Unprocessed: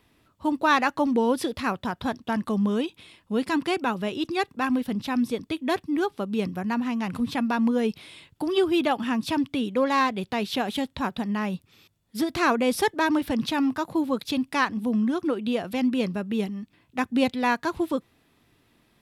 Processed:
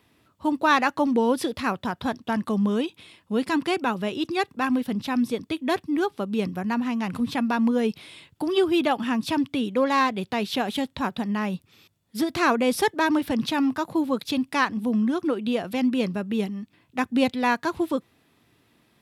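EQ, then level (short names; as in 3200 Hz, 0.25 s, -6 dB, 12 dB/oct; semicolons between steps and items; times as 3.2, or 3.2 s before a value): HPF 72 Hz; +1.0 dB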